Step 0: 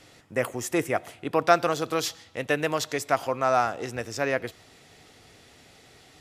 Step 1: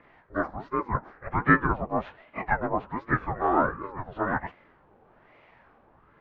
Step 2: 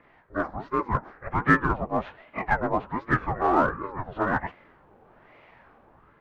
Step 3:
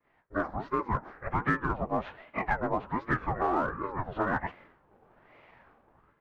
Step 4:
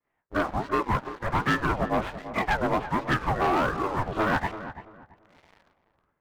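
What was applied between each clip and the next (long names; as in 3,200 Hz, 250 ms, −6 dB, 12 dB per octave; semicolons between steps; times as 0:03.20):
partials spread apart or drawn together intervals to 82%; auto-filter low-pass sine 0.96 Hz 750–1,500 Hz; ring modulator whose carrier an LFO sweeps 450 Hz, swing 65%, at 1.3 Hz
automatic gain control gain up to 4 dB; in parallel at −11.5 dB: hard clipping −20.5 dBFS, distortion −6 dB; on the sum: level −3 dB
downward expander −49 dBFS; downward compressor 4 to 1, threshold −25 dBFS, peak gain reduction 10.5 dB
leveller curve on the samples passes 3; feedback echo with a low-pass in the loop 336 ms, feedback 26%, low-pass 1,800 Hz, level −12 dB; level −4 dB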